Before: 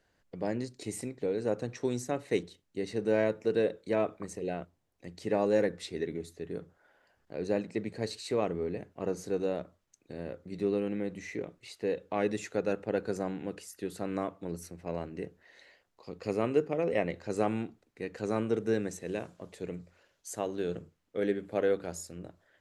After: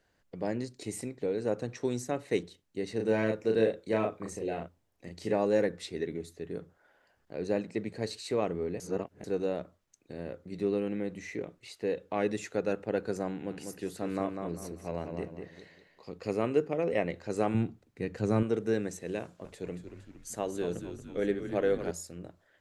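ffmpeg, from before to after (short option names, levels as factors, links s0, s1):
-filter_complex "[0:a]asettb=1/sr,asplit=3[s0][s1][s2];[s0]atrim=end=2.964[s3];[s1]atrim=start=2.96:end=5.34,asetpts=PTS-STARTPTS,afade=t=in:d=0.004:c=qsin,afade=t=out:st=2.376:d=0.004:c=qsin,asplit=2[s4][s5];[s5]adelay=36,volume=0.668[s6];[s4][s6]amix=inputs=2:normalize=0,atrim=end_sample=104958[s7];[s2]atrim=start=5.336[s8];[s3][s7]acrossfade=d=0.004:c1=hsin:c2=qsin[s9];[s9][s8]acrossfade=d=0.004:c1=qsin:c2=hsin,asettb=1/sr,asplit=3[s10][s11][s12];[s10]atrim=end=13.314[s13];[s11]atrim=start=13.31:end=16.12,asetpts=PTS-STARTPTS,afade=t=in:d=0.004:c=qsin,afade=t=out:st=2.806:d=0.004:c=qsin,asplit=2[s14][s15];[s15]adelay=197,lowpass=f=4000:p=1,volume=0.531,asplit=2[s16][s17];[s17]adelay=197,lowpass=f=4000:p=1,volume=0.33,asplit=2[s18][s19];[s19]adelay=197,lowpass=f=4000:p=1,volume=0.33,asplit=2[s20][s21];[s21]adelay=197,lowpass=f=4000:p=1,volume=0.33[s22];[s14][s16][s18][s20][s22]amix=inputs=5:normalize=0,atrim=end_sample=123921[s23];[s12]atrim=start=16.116[s24];[s13][s23]acrossfade=d=0.004:c1=hsin:c2=qsin[s25];[s25][s24]acrossfade=d=0.004:c1=qsin:c2=hsin,asettb=1/sr,asplit=3[s26][s27][s28];[s26]atrim=end=17.544[s29];[s27]atrim=start=17.54:end=18.43,asetpts=PTS-STARTPTS,afade=t=in:d=0.004:c=qsin,afade=t=out:st=0.886:d=0.004:c=qsin,equalizer=f=110:t=o:w=2.1:g=11[s30];[s28]atrim=start=18.426[s31];[s29][s30]acrossfade=d=0.004:c1=hsin:c2=qsin[s32];[s32][s31]acrossfade=d=0.004:c1=qsin:c2=hsin,asettb=1/sr,asplit=3[s33][s34][s35];[s33]atrim=end=19.214[s36];[s34]atrim=start=19.21:end=21.91,asetpts=PTS-STARTPTS,afade=t=in:d=0.004:c=qsin,afade=t=out:st=2.696:d=0.004:c=qsin,asplit=8[s37][s38][s39][s40][s41][s42][s43][s44];[s38]adelay=231,afreqshift=-77,volume=0.355[s45];[s39]adelay=462,afreqshift=-154,volume=0.209[s46];[s40]adelay=693,afreqshift=-231,volume=0.123[s47];[s41]adelay=924,afreqshift=-308,volume=0.0733[s48];[s42]adelay=1155,afreqshift=-385,volume=0.0432[s49];[s43]adelay=1386,afreqshift=-462,volume=0.0254[s50];[s44]adelay=1617,afreqshift=-539,volume=0.015[s51];[s37][s45][s46][s47][s48][s49][s50][s51]amix=inputs=8:normalize=0,atrim=end_sample=119070[s52];[s35]atrim=start=21.906[s53];[s36][s52]acrossfade=d=0.004:c1=hsin:c2=qsin[s54];[s54][s53]acrossfade=d=0.004:c1=qsin:c2=hsin,asplit=3[s55][s56][s57];[s55]atrim=end=8.802[s58];[s56]atrim=start=8.798:end=9.242,asetpts=PTS-STARTPTS,areverse[s59];[s57]atrim=start=9.238[s60];[s58][s59]acrossfade=d=0.004:c1=hsin:c2=hsin[s61];[s61][s60]acrossfade=d=0.004:c1=hsin:c2=hsin"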